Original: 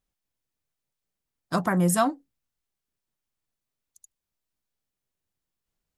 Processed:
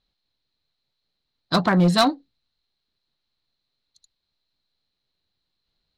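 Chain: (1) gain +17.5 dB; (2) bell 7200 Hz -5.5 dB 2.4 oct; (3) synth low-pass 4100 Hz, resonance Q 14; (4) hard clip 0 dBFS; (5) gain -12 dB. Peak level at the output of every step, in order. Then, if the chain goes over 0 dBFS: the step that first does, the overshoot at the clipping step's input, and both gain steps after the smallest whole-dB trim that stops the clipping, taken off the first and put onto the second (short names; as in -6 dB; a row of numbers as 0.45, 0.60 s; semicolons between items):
+6.0, +5.0, +8.0, 0.0, -12.0 dBFS; step 1, 8.0 dB; step 1 +9.5 dB, step 5 -4 dB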